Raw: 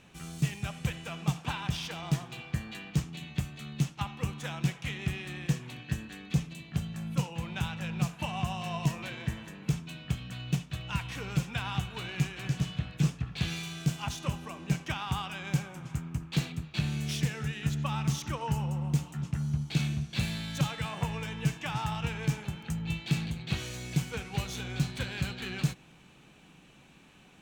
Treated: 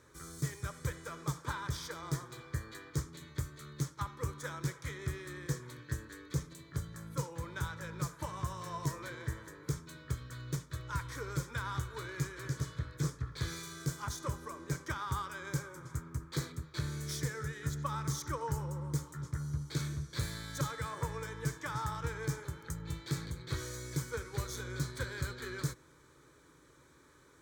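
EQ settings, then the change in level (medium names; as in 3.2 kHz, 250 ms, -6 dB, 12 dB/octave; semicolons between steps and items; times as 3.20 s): high-pass 52 Hz; static phaser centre 740 Hz, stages 6; +1.0 dB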